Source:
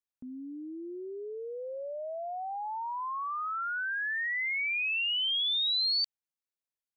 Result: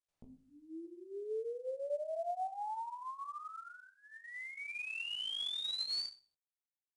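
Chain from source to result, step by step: compressor 8:1, threshold -33 dBFS, peak gain reduction 6.5 dB; 0.82–1.67 doubler 34 ms -12.5 dB; 5.07–5.61 speaker cabinet 240–2900 Hz, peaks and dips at 250 Hz +5 dB, 500 Hz +8 dB, 1100 Hz -6 dB; limiter -40 dBFS, peak gain reduction 8.5 dB; fixed phaser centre 670 Hz, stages 4; reverb removal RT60 1.9 s; 2.46–3.45 dynamic EQ 550 Hz, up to -5 dB, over -59 dBFS, Q 0.9; reverb RT60 0.55 s, pre-delay 7 ms, DRR 7 dB; chorus 0.63 Hz, delay 17 ms, depth 4.4 ms; gain +9 dB; IMA ADPCM 88 kbps 22050 Hz

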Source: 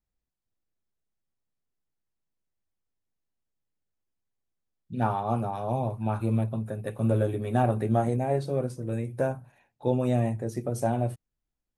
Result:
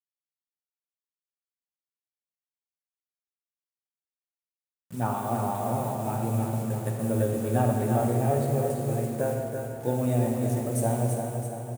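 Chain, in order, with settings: level-crossing sampler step -42.5 dBFS; HPF 42 Hz; resonant high shelf 6400 Hz +8.5 dB, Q 1.5; feedback echo 0.335 s, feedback 51%, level -6 dB; reverb RT60 2.7 s, pre-delay 22 ms, DRR 3 dB; gain -2.5 dB

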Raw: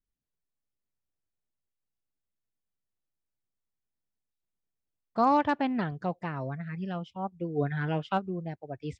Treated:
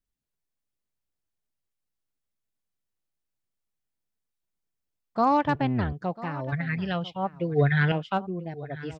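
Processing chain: 5.46–5.93 octaver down 1 oct, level 0 dB; 6.52–7.92 graphic EQ 125/250/500/2000/4000 Hz +11/-5/+6/+11/+12 dB; echo 0.995 s -17.5 dB; gain +1.5 dB

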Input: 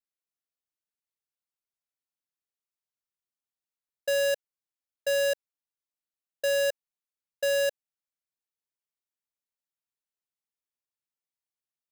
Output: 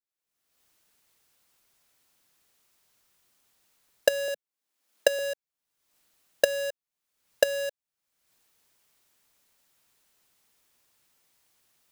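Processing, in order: recorder AGC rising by 48 dB/s; 4.28–5.19 steep high-pass 170 Hz 48 dB/oct; gain -5.5 dB

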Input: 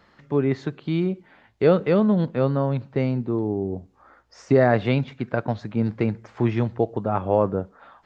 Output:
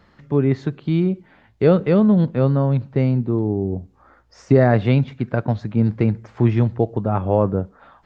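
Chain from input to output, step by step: low shelf 220 Hz +9.5 dB

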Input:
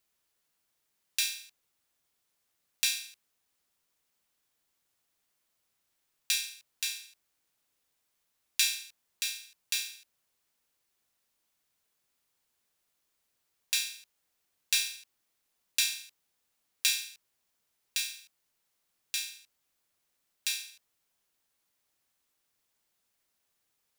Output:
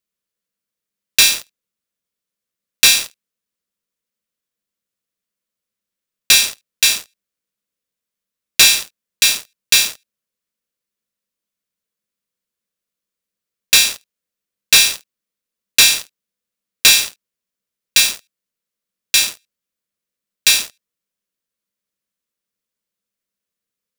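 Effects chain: thirty-one-band EQ 200 Hz +12 dB, 500 Hz +7 dB, 800 Hz -11 dB; sample leveller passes 5; gain +3.5 dB

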